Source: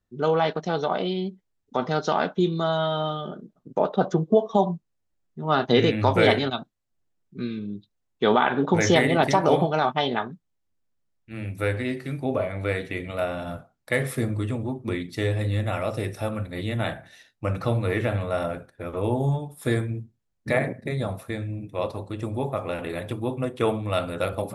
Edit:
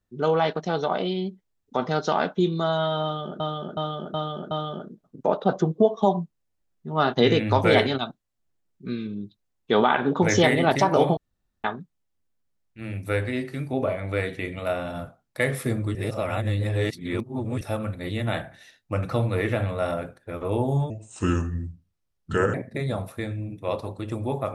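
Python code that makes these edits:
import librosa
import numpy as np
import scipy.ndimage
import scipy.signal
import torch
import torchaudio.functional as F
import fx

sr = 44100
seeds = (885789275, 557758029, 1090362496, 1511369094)

y = fx.edit(x, sr, fx.repeat(start_s=3.03, length_s=0.37, count=5),
    fx.room_tone_fill(start_s=9.69, length_s=0.47),
    fx.reverse_span(start_s=14.47, length_s=1.66),
    fx.speed_span(start_s=19.42, length_s=1.23, speed=0.75), tone=tone)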